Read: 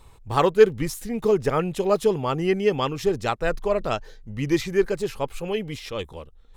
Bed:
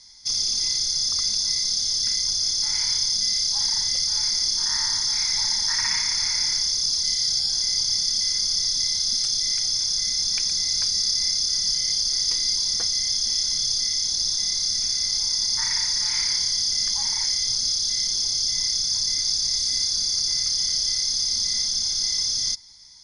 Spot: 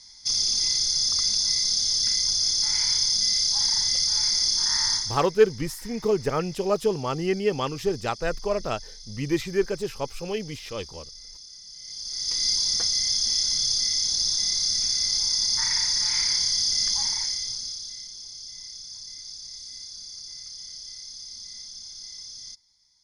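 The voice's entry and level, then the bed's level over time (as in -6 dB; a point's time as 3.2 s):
4.80 s, -3.0 dB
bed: 4.94 s 0 dB
5.32 s -21.5 dB
11.69 s -21.5 dB
12.44 s -0.5 dB
17.01 s -0.5 dB
18.12 s -16.5 dB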